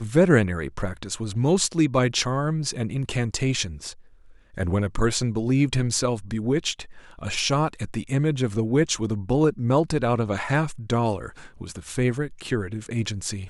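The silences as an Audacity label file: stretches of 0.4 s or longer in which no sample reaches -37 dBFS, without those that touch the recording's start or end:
3.920000	4.540000	silence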